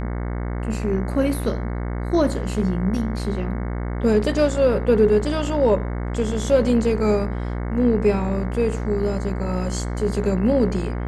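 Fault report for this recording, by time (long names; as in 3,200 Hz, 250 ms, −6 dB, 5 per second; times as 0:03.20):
mains buzz 60 Hz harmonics 37 −26 dBFS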